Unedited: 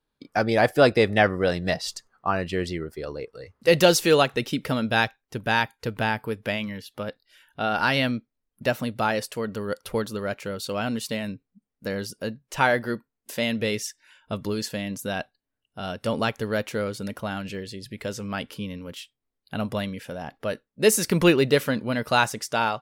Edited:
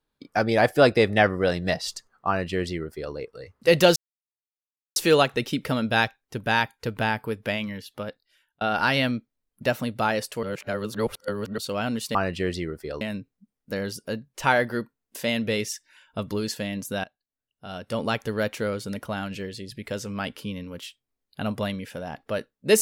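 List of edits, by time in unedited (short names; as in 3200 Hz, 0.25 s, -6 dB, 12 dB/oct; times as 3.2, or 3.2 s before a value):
2.28–3.14 copy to 11.15
3.96 insert silence 1.00 s
6.94–7.61 fade out
9.43–10.58 reverse
15.18–16.41 fade in, from -21.5 dB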